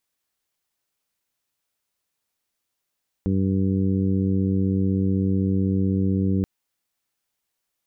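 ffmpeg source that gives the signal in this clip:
-f lavfi -i "aevalsrc='0.0708*sin(2*PI*95.9*t)+0.0841*sin(2*PI*191.8*t)+0.0447*sin(2*PI*287.7*t)+0.0251*sin(2*PI*383.6*t)+0.0158*sin(2*PI*479.5*t)':d=3.18:s=44100"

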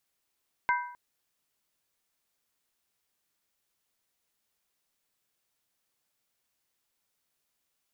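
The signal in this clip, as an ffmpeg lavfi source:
-f lavfi -i "aevalsrc='0.075*pow(10,-3*t/0.63)*sin(2*PI*977*t)+0.0531*pow(10,-3*t/0.499)*sin(2*PI*1557.3*t)+0.0376*pow(10,-3*t/0.431)*sin(2*PI*2086.9*t)':d=0.26:s=44100"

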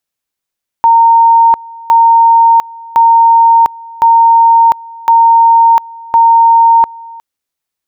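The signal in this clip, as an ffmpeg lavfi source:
-f lavfi -i "aevalsrc='pow(10,(-2.5-23.5*gte(mod(t,1.06),0.7))/20)*sin(2*PI*920*t)':d=6.36:s=44100"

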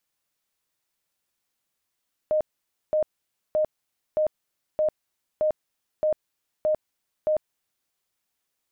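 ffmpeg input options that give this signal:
-f lavfi -i "aevalsrc='0.112*sin(2*PI*616*mod(t,0.62))*lt(mod(t,0.62),60/616)':d=5.58:s=44100"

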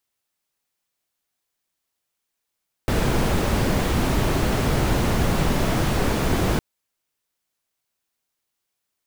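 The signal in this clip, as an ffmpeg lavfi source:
-f lavfi -i "anoisesrc=c=brown:a=0.468:d=3.71:r=44100:seed=1"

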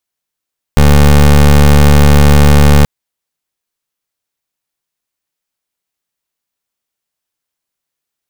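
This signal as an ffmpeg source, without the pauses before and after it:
-f lavfi -i "aevalsrc='0.596*(2*lt(mod(72.8*t,1),0.22)-1)':d=2.08:s=44100"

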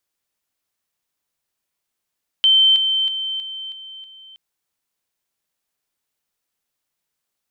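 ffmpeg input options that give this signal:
-f lavfi -i "aevalsrc='pow(10,(-10-6*floor(t/0.32))/20)*sin(2*PI*3100*t)':d=1.92:s=44100"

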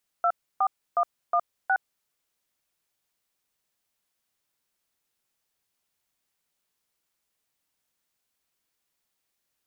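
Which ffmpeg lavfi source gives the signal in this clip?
-f lavfi -i "aevalsrc='0.0794*clip(min(mod(t,0.364),0.065-mod(t,0.364))/0.002,0,1)*(eq(floor(t/0.364),0)*(sin(2*PI*697*mod(t,0.364))+sin(2*PI*1336*mod(t,0.364)))+eq(floor(t/0.364),1)*(sin(2*PI*770*mod(t,0.364))+sin(2*PI*1209*mod(t,0.364)))+eq(floor(t/0.364),2)*(sin(2*PI*697*mod(t,0.364))+sin(2*PI*1209*mod(t,0.364)))+eq(floor(t/0.364),3)*(sin(2*PI*697*mod(t,0.364))+sin(2*PI*1209*mod(t,0.364)))+eq(floor(t/0.364),4)*(sin(2*PI*770*mod(t,0.364))+sin(2*PI*1477*mod(t,0.364))))':d=1.82:s=44100"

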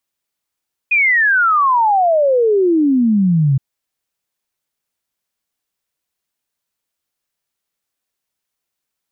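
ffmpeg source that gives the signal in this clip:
-f lavfi -i "aevalsrc='0.316*clip(min(t,2.67-t)/0.01,0,1)*sin(2*PI*2500*2.67/log(130/2500)*(exp(log(130/2500)*t/2.67)-1))':d=2.67:s=44100"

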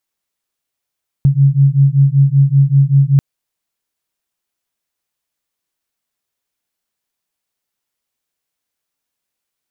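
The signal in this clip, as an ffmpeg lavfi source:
-f lavfi -i "aevalsrc='0.299*(sin(2*PI*136*t)+sin(2*PI*141.2*t))':d=1.94:s=44100"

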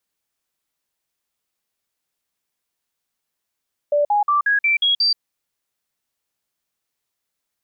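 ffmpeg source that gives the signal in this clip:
-f lavfi -i "aevalsrc='0.2*clip(min(mod(t,0.18),0.13-mod(t,0.18))/0.005,0,1)*sin(2*PI*585*pow(2,floor(t/0.18)/2)*mod(t,0.18))':d=1.26:s=44100"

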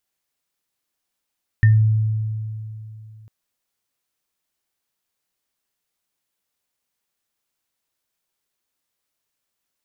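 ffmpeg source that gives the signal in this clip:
-f lavfi -i "aevalsrc='0.376*pow(10,-3*t/2.93)*sin(2*PI*109*t)+0.119*pow(10,-3*t/0.22)*sin(2*PI*1810*t)':d=1.65:s=44100"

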